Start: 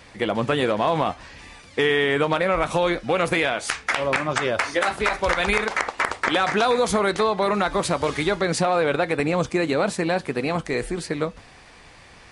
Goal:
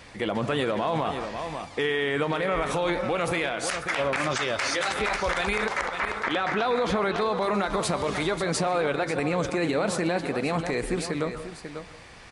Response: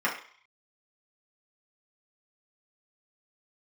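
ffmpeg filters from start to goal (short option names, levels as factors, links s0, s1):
-filter_complex "[0:a]asettb=1/sr,asplit=3[s0][s1][s2];[s0]atrim=end=4.204[s3];[s1]atrim=start=4.2:end=4.94,asetpts=PTS-STARTPTS,afade=t=in:d=0.004:c=qsin,afade=t=out:st=0.736:d=0.004:c=qsin,equalizer=f=5100:t=o:w=2.3:g=9.5[s4];[s2]atrim=start=4.936[s5];[s3][s4]acrossfade=d=0.004:c1=hsin:c2=qsin[s6];[s6][s5]acrossfade=d=0.004:c1=qsin:c2=hsin,asettb=1/sr,asplit=3[s7][s8][s9];[s7]atrim=end=5.854[s10];[s8]atrim=start=5.85:end=7.21,asetpts=PTS-STARTPTS,afade=t=in:d=0.004:c=qsin,afade=t=out:st=1.356:d=0.004:c=qsin,acrossover=split=4500[s11][s12];[s12]acompressor=threshold=0.00224:ratio=4:attack=1:release=60[s13];[s11][s13]amix=inputs=2:normalize=0[s14];[s9]atrim=start=7.206[s15];[s10][s14]acrossfade=d=0.004:c1=hsin:c2=qsin[s16];[s16][s15]acrossfade=d=0.004:c1=qsin:c2=hsin,aecho=1:1:542:0.237,asplit=2[s17][s18];[1:a]atrim=start_sample=2205,asetrate=30870,aresample=44100,adelay=126[s19];[s18][s19]afir=irnorm=-1:irlink=0,volume=0.0376[s20];[s17][s20]amix=inputs=2:normalize=0,alimiter=limit=0.141:level=0:latency=1:release=49"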